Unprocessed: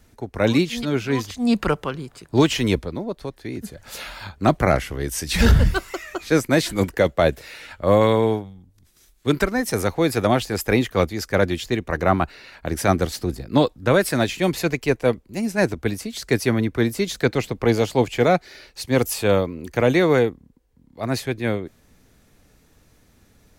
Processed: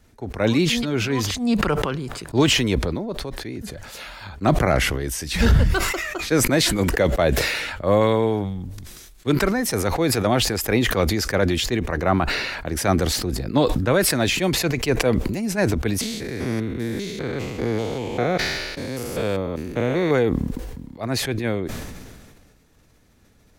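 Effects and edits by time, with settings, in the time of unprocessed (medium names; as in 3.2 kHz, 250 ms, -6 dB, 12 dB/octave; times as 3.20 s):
16.01–20.11 s: spectrogram pixelated in time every 200 ms
whole clip: treble shelf 8.3 kHz -4 dB; decay stretcher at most 32 dB/s; trim -2 dB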